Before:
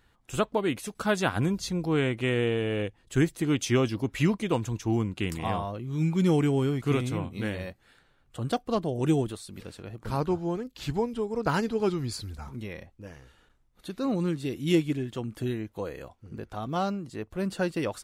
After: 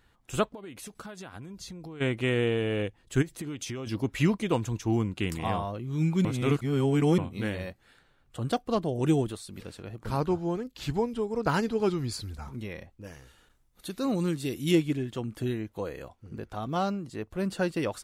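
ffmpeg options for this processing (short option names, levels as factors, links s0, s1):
-filter_complex "[0:a]asplit=3[s0][s1][s2];[s0]afade=t=out:st=0.48:d=0.02[s3];[s1]acompressor=threshold=0.0126:ratio=20:attack=3.2:release=140:knee=1:detection=peak,afade=t=in:st=0.48:d=0.02,afade=t=out:st=2:d=0.02[s4];[s2]afade=t=in:st=2:d=0.02[s5];[s3][s4][s5]amix=inputs=3:normalize=0,asplit=3[s6][s7][s8];[s6]afade=t=out:st=3.21:d=0.02[s9];[s7]acompressor=threshold=0.0251:ratio=12:attack=3.2:release=140:knee=1:detection=peak,afade=t=in:st=3.21:d=0.02,afade=t=out:st=3.86:d=0.02[s10];[s8]afade=t=in:st=3.86:d=0.02[s11];[s9][s10][s11]amix=inputs=3:normalize=0,asettb=1/sr,asplit=3[s12][s13][s14];[s12]atrim=end=13.044[s15];[s13]atrim=start=13.04:end=14.71,asetpts=PTS-STARTPTS,afade=t=in:d=0.004:c=qsin,afade=t=out:st=1.666:d=0.004:c=qsin,aemphasis=mode=production:type=cd[s16];[s14]atrim=start=14.706[s17];[s15][s16]acrossfade=d=0.004:c1=hsin:c2=qsin[s18];[s18][s17]acrossfade=d=0.004:c1=qsin:c2=hsin,asplit=3[s19][s20][s21];[s19]atrim=end=6.252[s22];[s20]atrim=start=6.248:end=7.182,asetpts=PTS-STARTPTS,areverse[s23];[s21]atrim=start=7.178[s24];[s22][s23]acrossfade=d=0.004:c1=hsin:c2=hsin[s25];[s25][s24]acrossfade=d=0.004:c1=hsin:c2=hsin"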